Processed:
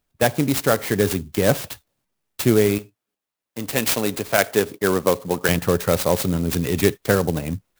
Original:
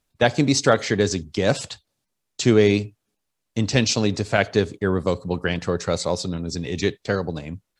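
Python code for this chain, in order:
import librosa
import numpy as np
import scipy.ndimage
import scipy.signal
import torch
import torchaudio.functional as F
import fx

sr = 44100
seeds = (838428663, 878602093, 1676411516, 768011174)

y = fx.highpass(x, sr, hz=420.0, slope=6, at=(2.78, 5.49))
y = fx.rider(y, sr, range_db=5, speed_s=0.5)
y = fx.clock_jitter(y, sr, seeds[0], jitter_ms=0.055)
y = F.gain(torch.from_numpy(y), 2.0).numpy()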